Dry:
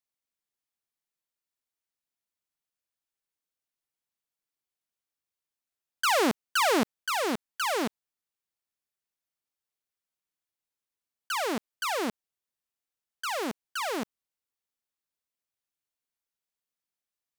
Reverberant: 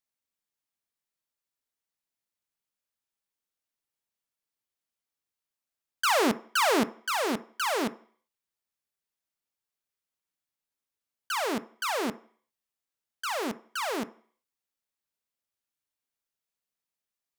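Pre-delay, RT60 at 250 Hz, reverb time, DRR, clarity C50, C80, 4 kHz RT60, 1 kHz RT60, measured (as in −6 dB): 3 ms, 0.45 s, 0.50 s, 12.0 dB, 18.0 dB, 23.0 dB, 0.55 s, 0.55 s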